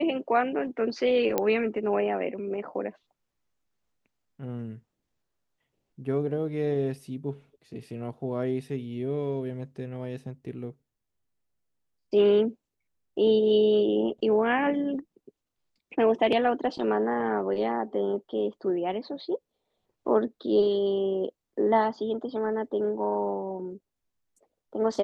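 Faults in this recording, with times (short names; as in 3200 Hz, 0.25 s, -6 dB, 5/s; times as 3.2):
1.38 pop -11 dBFS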